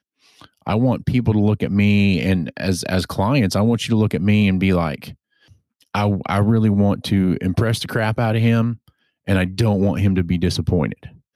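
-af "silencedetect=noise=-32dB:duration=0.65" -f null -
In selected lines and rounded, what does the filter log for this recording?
silence_start: 5.12
silence_end: 5.95 | silence_duration: 0.83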